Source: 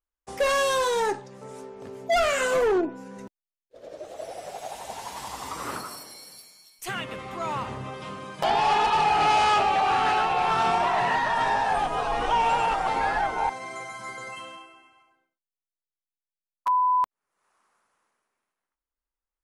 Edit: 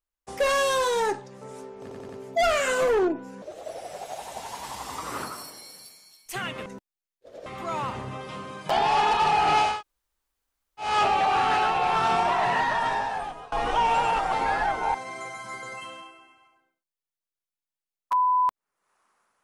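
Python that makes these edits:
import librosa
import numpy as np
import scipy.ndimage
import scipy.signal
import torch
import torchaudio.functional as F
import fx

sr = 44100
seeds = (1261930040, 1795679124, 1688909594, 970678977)

y = fx.edit(x, sr, fx.stutter(start_s=1.82, slice_s=0.09, count=4),
    fx.move(start_s=3.15, length_s=0.8, to_s=7.19),
    fx.insert_room_tone(at_s=9.44, length_s=1.18, crossfade_s=0.24),
    fx.fade_out_to(start_s=11.27, length_s=0.8, floor_db=-22.5), tone=tone)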